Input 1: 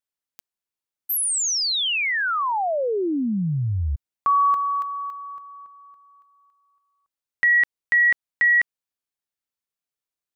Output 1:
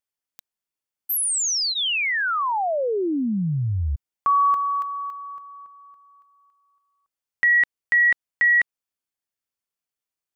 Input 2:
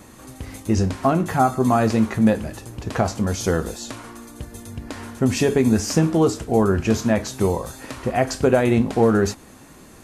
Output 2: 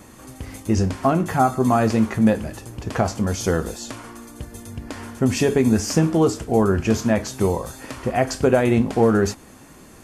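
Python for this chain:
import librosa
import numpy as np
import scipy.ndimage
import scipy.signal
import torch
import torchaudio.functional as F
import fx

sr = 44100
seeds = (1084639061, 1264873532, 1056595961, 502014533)

y = fx.notch(x, sr, hz=3900.0, q=15.0)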